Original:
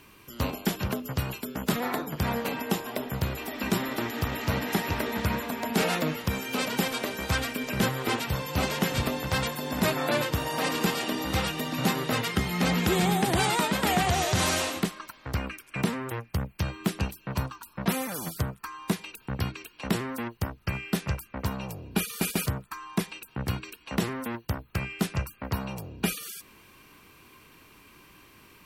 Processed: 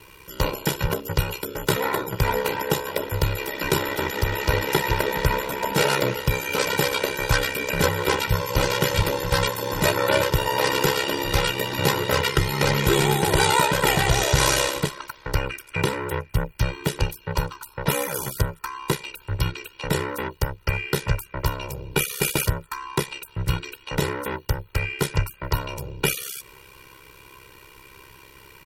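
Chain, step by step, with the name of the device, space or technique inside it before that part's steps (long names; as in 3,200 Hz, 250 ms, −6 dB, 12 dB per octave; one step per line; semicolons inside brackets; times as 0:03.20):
ring-modulated robot voice (ring modulation 33 Hz; comb filter 2.1 ms, depth 83%)
level +7 dB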